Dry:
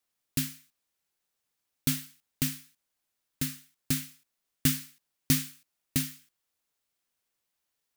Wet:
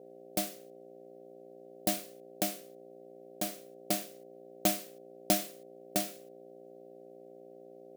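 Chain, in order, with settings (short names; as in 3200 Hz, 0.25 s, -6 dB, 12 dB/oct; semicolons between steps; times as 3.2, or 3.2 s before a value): hum 60 Hz, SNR 13 dB; ring modulator 460 Hz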